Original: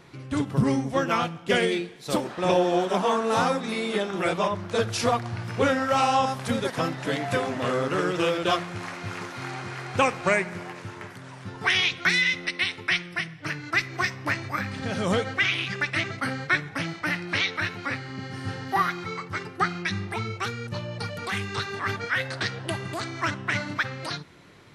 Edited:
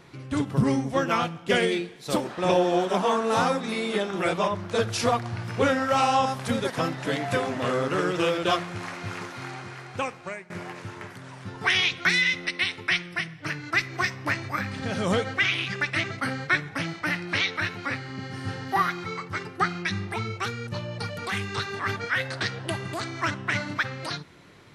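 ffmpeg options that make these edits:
ffmpeg -i in.wav -filter_complex "[0:a]asplit=2[link_01][link_02];[link_01]atrim=end=10.5,asetpts=PTS-STARTPTS,afade=type=out:start_time=9.12:duration=1.38:silence=0.0891251[link_03];[link_02]atrim=start=10.5,asetpts=PTS-STARTPTS,afade=type=in:duration=0.004:curve=hsin:silence=0.0891251[link_04];[link_03][link_04]concat=n=2:v=0:a=1" out.wav

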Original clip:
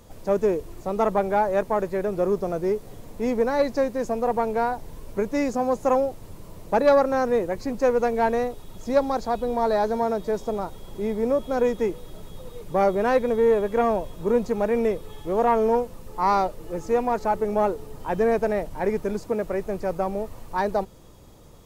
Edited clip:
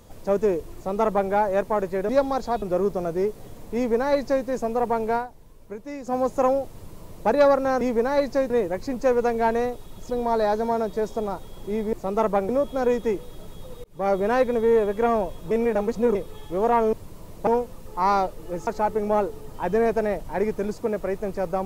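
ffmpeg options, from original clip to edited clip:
ffmpeg -i in.wav -filter_complex "[0:a]asplit=16[link_01][link_02][link_03][link_04][link_05][link_06][link_07][link_08][link_09][link_10][link_11][link_12][link_13][link_14][link_15][link_16];[link_01]atrim=end=2.092[link_17];[link_02]atrim=start=8.878:end=9.412[link_18];[link_03]atrim=start=2.088:end=4.74,asetpts=PTS-STARTPTS,afade=type=out:start_time=2.532:duration=0.12:silence=0.281838[link_19];[link_04]atrim=start=4.74:end=5.5,asetpts=PTS-STARTPTS,volume=-11dB[link_20];[link_05]atrim=start=5.5:end=7.282,asetpts=PTS-STARTPTS,afade=type=in:duration=0.12:silence=0.281838[link_21];[link_06]atrim=start=3.228:end=3.922[link_22];[link_07]atrim=start=7.278:end=8.882[link_23];[link_08]atrim=start=9.408:end=11.242[link_24];[link_09]atrim=start=0.748:end=1.312[link_25];[link_10]atrim=start=11.238:end=12.59,asetpts=PTS-STARTPTS,afade=type=out:start_time=1.348:duration=0.004:curve=hsin[link_26];[link_11]atrim=start=12.59:end=14.262,asetpts=PTS-STARTPTS,afade=type=in:duration=0.33[link_27];[link_12]atrim=start=14.258:end=14.902,asetpts=PTS-STARTPTS,areverse[link_28];[link_13]atrim=start=14.898:end=15.682[link_29];[link_14]atrim=start=6.208:end=6.752[link_30];[link_15]atrim=start=15.678:end=16.882[link_31];[link_16]atrim=start=17.128[link_32];[link_17][link_18]acrossfade=duration=0.004:curve1=hsin:curve2=hsin[link_33];[link_19][link_20][link_21]concat=n=3:v=0:a=1[link_34];[link_33][link_34]acrossfade=duration=0.004:curve1=hsin:curve2=hsin[link_35];[link_35][link_22]acrossfade=duration=0.004:curve1=hsin:curve2=hsin[link_36];[link_36][link_23]acrossfade=duration=0.004:curve1=hsin:curve2=hsin[link_37];[link_37][link_24]acrossfade=duration=0.004:curve1=hsin:curve2=hsin[link_38];[link_38][link_25]acrossfade=duration=0.004:curve1=hsin:curve2=hsin[link_39];[link_26][link_27]concat=n=2:v=0:a=1[link_40];[link_39][link_40]acrossfade=duration=0.004:curve1=hsin:curve2=hsin[link_41];[link_41][link_28]acrossfade=duration=0.004:curve1=hsin:curve2=hsin[link_42];[link_42][link_29]acrossfade=duration=0.004:curve1=hsin:curve2=hsin[link_43];[link_43][link_30]acrossfade=duration=0.004:curve1=hsin:curve2=hsin[link_44];[link_44][link_31]acrossfade=duration=0.004:curve1=hsin:curve2=hsin[link_45];[link_45][link_32]acrossfade=duration=0.004:curve1=hsin:curve2=hsin" out.wav

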